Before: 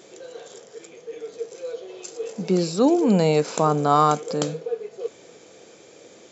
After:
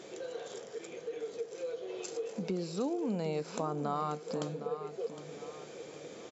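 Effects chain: treble shelf 6.9 kHz -10 dB; compression 3:1, threshold -37 dBFS, peak gain reduction 17.5 dB; feedback delay 761 ms, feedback 41%, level -11.5 dB

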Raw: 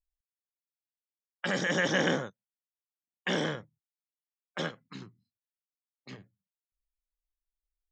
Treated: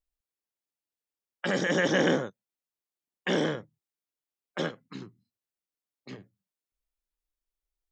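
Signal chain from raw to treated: peaking EQ 360 Hz +6 dB 1.6 oct

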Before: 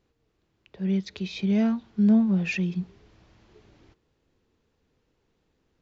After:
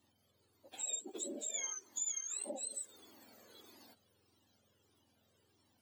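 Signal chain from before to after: spectrum inverted on a logarithmic axis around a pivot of 1.2 kHz; compression 8:1, threshold -41 dBFS, peak gain reduction 19.5 dB; Shepard-style flanger falling 1.6 Hz; trim +6.5 dB

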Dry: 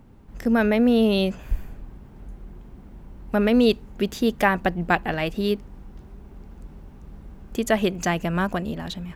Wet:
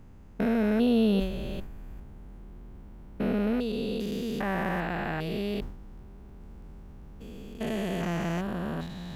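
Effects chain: spectrogram pixelated in time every 400 ms; decay stretcher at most 76 dB/s; trim -3 dB

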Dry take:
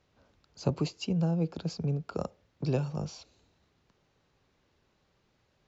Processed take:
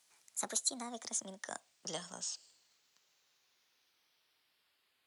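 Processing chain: gliding tape speed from 159% -> 65%; differentiator; trim +9.5 dB

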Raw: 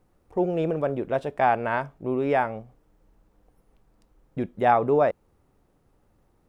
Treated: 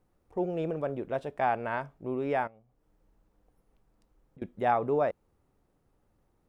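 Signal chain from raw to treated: 2.47–4.42 s: compression 16:1, threshold -47 dBFS, peak gain reduction 23.5 dB; trim -6.5 dB

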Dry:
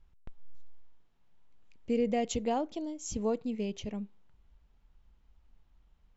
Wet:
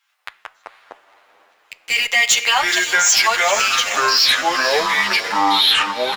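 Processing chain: high-pass 1.3 kHz 24 dB/octave; waveshaping leveller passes 3; on a send at -12.5 dB: reverberation RT60 0.65 s, pre-delay 3 ms; on the sum: ever faster or slower copies 86 ms, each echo -5 st, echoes 3; echo that smears into a reverb 490 ms, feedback 51%, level -13 dB; loudness maximiser +29.5 dB; endless flanger 9 ms +0.44 Hz; trim -3 dB

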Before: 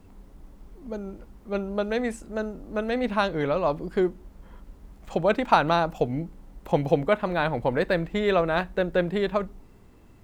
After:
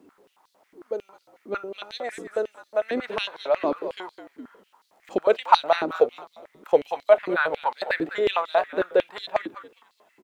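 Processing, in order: frequency-shifting echo 206 ms, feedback 37%, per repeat -60 Hz, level -11.5 dB; step-sequenced high-pass 11 Hz 310–4100 Hz; trim -3.5 dB

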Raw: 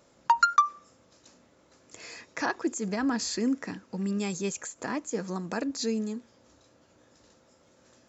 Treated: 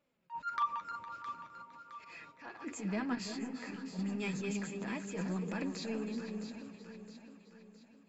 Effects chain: backward echo that repeats 230 ms, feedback 50%, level -12 dB; gate -54 dBFS, range -12 dB; fifteen-band graphic EQ 160 Hz +7 dB, 2.5 kHz +9 dB, 6.3 kHz -11 dB; transient shaper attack -7 dB, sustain +5 dB; 2.14–2.57 s: compression 3:1, threshold -40 dBFS, peak gain reduction 11.5 dB; slow attack 118 ms; saturation -17.5 dBFS, distortion -23 dB; flange 0.54 Hz, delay 3.3 ms, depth 7.6 ms, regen +35%; echo whose repeats swap between lows and highs 332 ms, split 900 Hz, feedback 67%, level -6 dB; 3.15–3.99 s: detune thickener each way 15 cents; trim -4 dB

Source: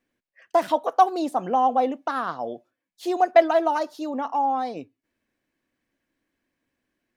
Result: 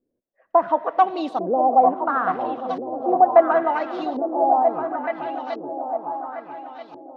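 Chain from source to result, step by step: delay with an opening low-pass 428 ms, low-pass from 200 Hz, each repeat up 2 oct, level -3 dB; algorithmic reverb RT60 2.3 s, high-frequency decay 0.95×, pre-delay 45 ms, DRR 16 dB; LFO low-pass saw up 0.72 Hz 400–4300 Hz; trim -1 dB

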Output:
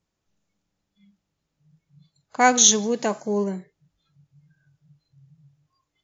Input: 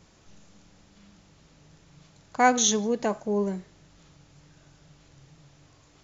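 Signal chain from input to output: 2.41–3.44 s: treble shelf 2.9 kHz +8 dB; spectral noise reduction 24 dB; trim +2 dB

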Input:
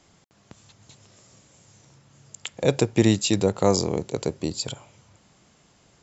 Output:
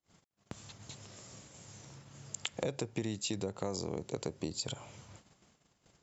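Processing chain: gate -56 dBFS, range -36 dB; in parallel at 0 dB: peak limiter -12 dBFS, peak gain reduction 7.5 dB; on the sum: compression 8:1, threshold -29 dBFS, peak gain reduction 19.5 dB; trim -4 dB

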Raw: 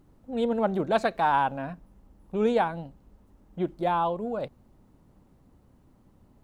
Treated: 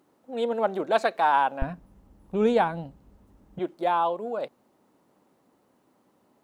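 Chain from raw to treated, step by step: high-pass 360 Hz 12 dB/octave, from 1.62 s 44 Hz, from 3.59 s 350 Hz; trim +2 dB

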